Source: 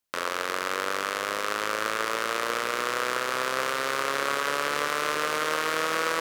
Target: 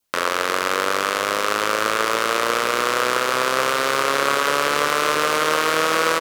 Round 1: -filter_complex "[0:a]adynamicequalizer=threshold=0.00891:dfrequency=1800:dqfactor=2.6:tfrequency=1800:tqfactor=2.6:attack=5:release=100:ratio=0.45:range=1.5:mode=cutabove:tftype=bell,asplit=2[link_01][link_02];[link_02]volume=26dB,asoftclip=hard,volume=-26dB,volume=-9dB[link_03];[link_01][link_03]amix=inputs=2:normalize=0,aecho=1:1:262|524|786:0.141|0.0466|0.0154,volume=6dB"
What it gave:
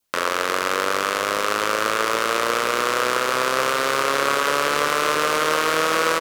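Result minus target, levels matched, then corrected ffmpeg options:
gain into a clipping stage and back: distortion +11 dB
-filter_complex "[0:a]adynamicequalizer=threshold=0.00891:dfrequency=1800:dqfactor=2.6:tfrequency=1800:tqfactor=2.6:attack=5:release=100:ratio=0.45:range=1.5:mode=cutabove:tftype=bell,asplit=2[link_01][link_02];[link_02]volume=16dB,asoftclip=hard,volume=-16dB,volume=-9dB[link_03];[link_01][link_03]amix=inputs=2:normalize=0,aecho=1:1:262|524|786:0.141|0.0466|0.0154,volume=6dB"

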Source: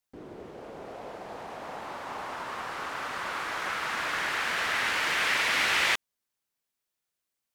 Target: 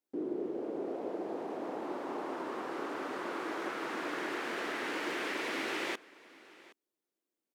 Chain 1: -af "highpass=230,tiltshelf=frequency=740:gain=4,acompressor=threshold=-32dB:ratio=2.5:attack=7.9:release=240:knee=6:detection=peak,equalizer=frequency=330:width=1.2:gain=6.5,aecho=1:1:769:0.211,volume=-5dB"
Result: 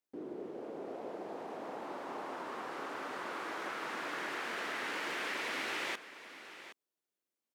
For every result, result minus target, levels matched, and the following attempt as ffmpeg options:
250 Hz band −5.0 dB; echo-to-direct +7.5 dB
-af "highpass=230,tiltshelf=frequency=740:gain=4,acompressor=threshold=-32dB:ratio=2.5:attack=7.9:release=240:knee=6:detection=peak,equalizer=frequency=330:width=1.2:gain=15.5,aecho=1:1:769:0.211,volume=-5dB"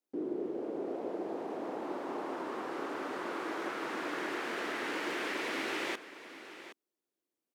echo-to-direct +7.5 dB
-af "highpass=230,tiltshelf=frequency=740:gain=4,acompressor=threshold=-32dB:ratio=2.5:attack=7.9:release=240:knee=6:detection=peak,equalizer=frequency=330:width=1.2:gain=15.5,aecho=1:1:769:0.0891,volume=-5dB"

